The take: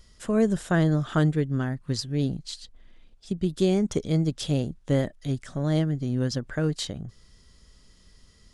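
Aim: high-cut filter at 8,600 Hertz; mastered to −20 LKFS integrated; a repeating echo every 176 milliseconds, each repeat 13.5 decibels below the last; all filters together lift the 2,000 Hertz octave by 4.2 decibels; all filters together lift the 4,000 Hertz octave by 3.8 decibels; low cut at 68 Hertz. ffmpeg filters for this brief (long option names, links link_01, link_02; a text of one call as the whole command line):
ffmpeg -i in.wav -af "highpass=68,lowpass=8600,equalizer=frequency=2000:width_type=o:gain=5,equalizer=frequency=4000:width_type=o:gain=3.5,aecho=1:1:176|352:0.211|0.0444,volume=6dB" out.wav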